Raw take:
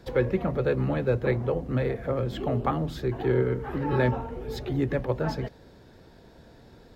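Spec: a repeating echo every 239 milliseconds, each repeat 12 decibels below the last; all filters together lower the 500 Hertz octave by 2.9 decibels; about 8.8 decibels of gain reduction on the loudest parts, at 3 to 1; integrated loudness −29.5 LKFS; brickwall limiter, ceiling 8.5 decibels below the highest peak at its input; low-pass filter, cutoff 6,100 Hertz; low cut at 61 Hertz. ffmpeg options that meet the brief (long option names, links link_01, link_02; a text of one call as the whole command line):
ffmpeg -i in.wav -af "highpass=61,lowpass=6100,equalizer=frequency=500:width_type=o:gain=-3.5,acompressor=threshold=-33dB:ratio=3,alimiter=level_in=6.5dB:limit=-24dB:level=0:latency=1,volume=-6.5dB,aecho=1:1:239|478|717:0.251|0.0628|0.0157,volume=9.5dB" out.wav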